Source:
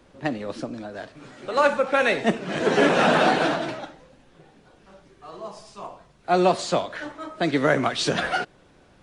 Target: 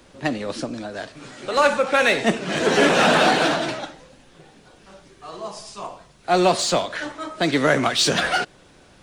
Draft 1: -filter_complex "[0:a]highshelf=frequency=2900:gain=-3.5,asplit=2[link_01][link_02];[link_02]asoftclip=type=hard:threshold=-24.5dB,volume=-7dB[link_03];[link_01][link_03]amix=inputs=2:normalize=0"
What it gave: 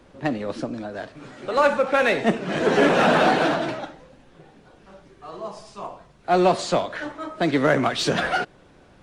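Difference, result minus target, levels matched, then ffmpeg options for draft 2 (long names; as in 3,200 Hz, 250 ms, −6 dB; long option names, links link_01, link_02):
8,000 Hz band −7.5 dB
-filter_complex "[0:a]highshelf=frequency=2900:gain=8.5,asplit=2[link_01][link_02];[link_02]asoftclip=type=hard:threshold=-24.5dB,volume=-7dB[link_03];[link_01][link_03]amix=inputs=2:normalize=0"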